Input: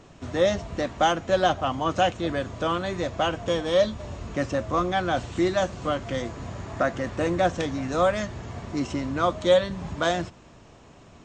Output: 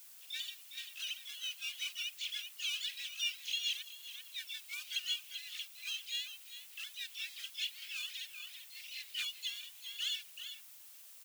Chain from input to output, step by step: sine-wave speech; sample leveller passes 1; outdoor echo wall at 67 m, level -10 dB; compressor 6:1, threshold -24 dBFS, peak gain reduction 14.5 dB; harmoniser -3 st 0 dB, +4 st -8 dB, +12 st -12 dB; steep high-pass 2900 Hz 36 dB/oct; added noise blue -63 dBFS; gain +7.5 dB

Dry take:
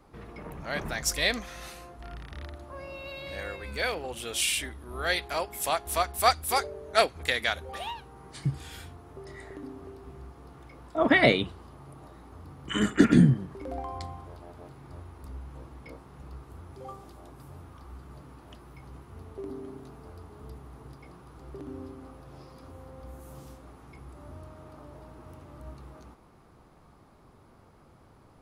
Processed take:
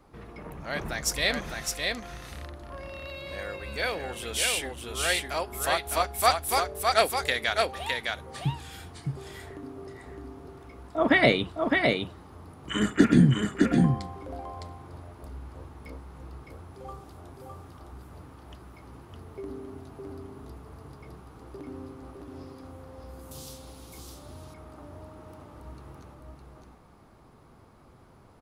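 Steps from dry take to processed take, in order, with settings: 23.31–23.93 resonant high shelf 2600 Hz +13.5 dB, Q 1.5; on a send: echo 0.61 s -3.5 dB

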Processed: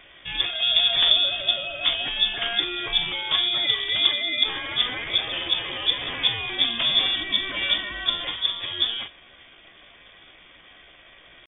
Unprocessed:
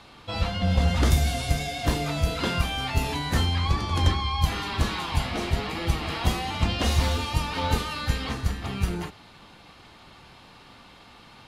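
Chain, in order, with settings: high shelf 2100 Hz +5 dB; pitch shift +5 st; inverted band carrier 3500 Hz

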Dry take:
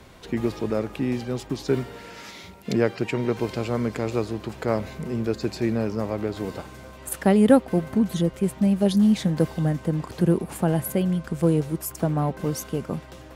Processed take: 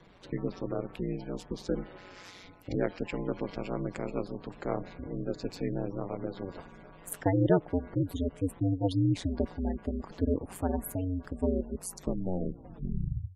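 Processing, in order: tape stop at the end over 1.67 s; ring modulator 92 Hz; spectral gate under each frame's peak -25 dB strong; gain -5.5 dB

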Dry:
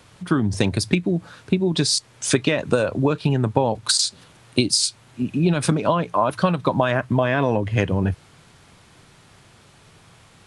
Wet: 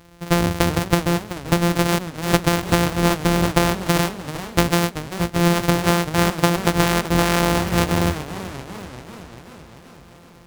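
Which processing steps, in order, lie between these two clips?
sample sorter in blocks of 256 samples; warbling echo 0.387 s, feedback 64%, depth 192 cents, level -13 dB; gain +1.5 dB

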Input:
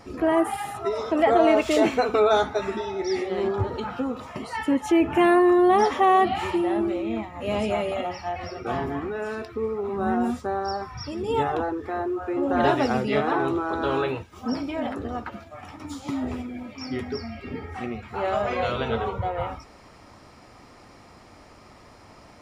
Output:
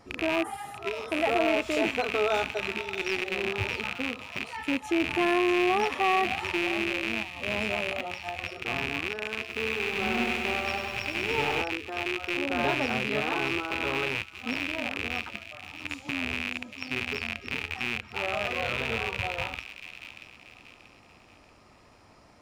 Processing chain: rattling part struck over -36 dBFS, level -10 dBFS; thin delay 0.634 s, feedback 39%, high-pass 2400 Hz, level -8 dB; 9.39–11.62 lo-fi delay 99 ms, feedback 80%, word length 8-bit, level -5 dB; gain -7.5 dB

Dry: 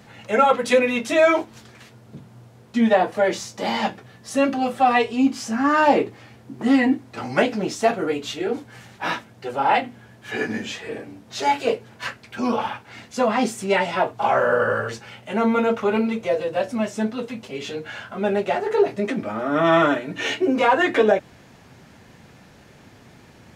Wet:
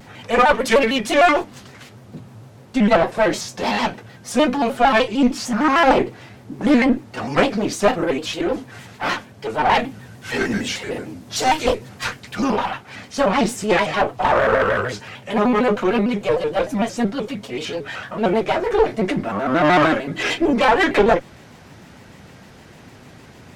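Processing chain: one diode to ground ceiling -22 dBFS; 9.79–12.44 tone controls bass +4 dB, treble +6 dB; shaped vibrato square 6.6 Hz, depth 160 cents; gain +5 dB

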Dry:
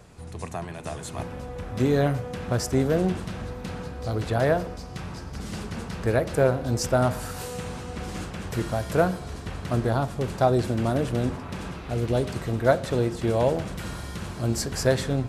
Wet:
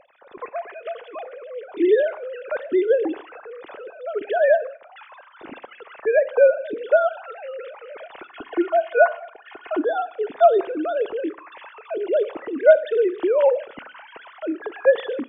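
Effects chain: sine-wave speech; 8.3–9.83 comb 2.8 ms, depth 67%; Schroeder reverb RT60 0.57 s, combs from 26 ms, DRR 18 dB; gain +3.5 dB

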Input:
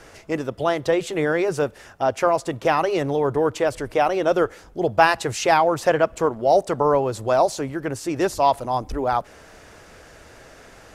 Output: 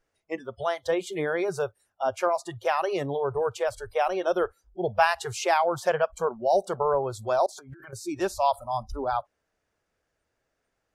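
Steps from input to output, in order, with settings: spectral noise reduction 27 dB; 7.46–7.93 negative-ratio compressor -41 dBFS, ratio -1; gain -5.5 dB

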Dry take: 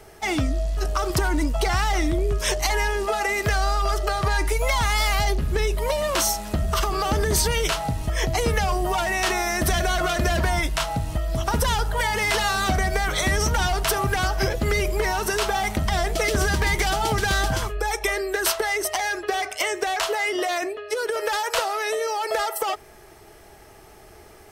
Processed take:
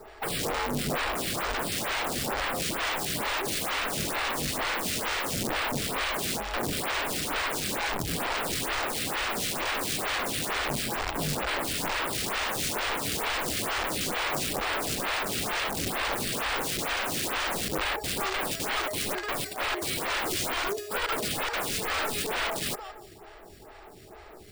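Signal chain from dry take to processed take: sample-and-hold 7×; thinning echo 0.168 s, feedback 38%, high-pass 410 Hz, level -17 dB; wrapped overs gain 24.5 dB; photocell phaser 2.2 Hz; gain +2.5 dB

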